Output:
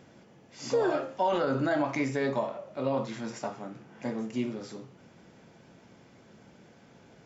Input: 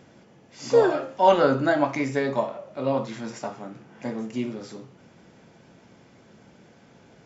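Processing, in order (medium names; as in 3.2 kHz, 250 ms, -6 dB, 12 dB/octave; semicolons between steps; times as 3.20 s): peak limiter -16 dBFS, peak gain reduction 11 dB; trim -2.5 dB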